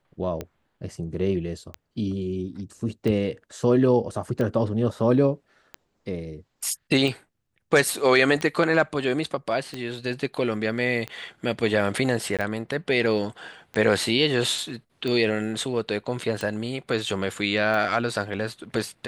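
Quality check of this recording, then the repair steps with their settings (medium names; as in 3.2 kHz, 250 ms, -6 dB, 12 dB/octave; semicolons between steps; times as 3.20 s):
tick 45 rpm -17 dBFS
12.37–12.39 s: dropout 17 ms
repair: de-click; interpolate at 12.37 s, 17 ms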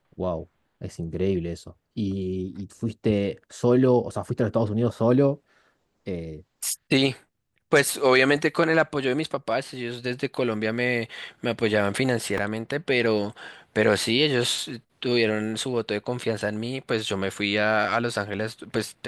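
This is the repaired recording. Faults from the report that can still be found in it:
nothing left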